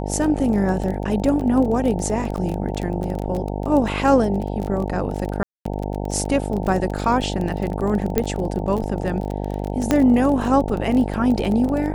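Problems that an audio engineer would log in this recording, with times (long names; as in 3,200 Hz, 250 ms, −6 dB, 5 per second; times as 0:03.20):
mains buzz 50 Hz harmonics 18 −26 dBFS
surface crackle 24 per second −24 dBFS
0:01.41: drop-out 3.2 ms
0:05.43–0:05.65: drop-out 224 ms
0:08.18: click −5 dBFS
0:09.91: click −4 dBFS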